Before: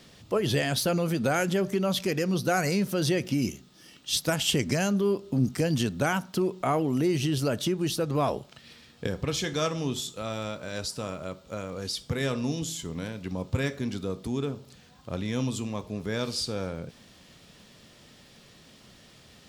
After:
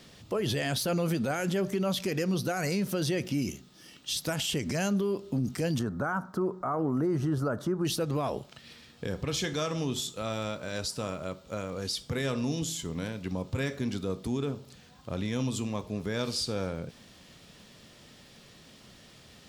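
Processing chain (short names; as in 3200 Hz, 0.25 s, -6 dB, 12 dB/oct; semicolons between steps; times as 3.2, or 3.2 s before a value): 5.79–7.85 resonant high shelf 1900 Hz -12.5 dB, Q 3; limiter -21.5 dBFS, peak gain reduction 10.5 dB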